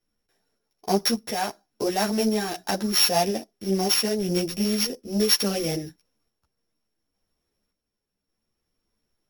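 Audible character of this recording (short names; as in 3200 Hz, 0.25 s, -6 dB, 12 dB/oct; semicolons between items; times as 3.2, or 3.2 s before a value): a buzz of ramps at a fixed pitch in blocks of 8 samples; random-step tremolo; a shimmering, thickened sound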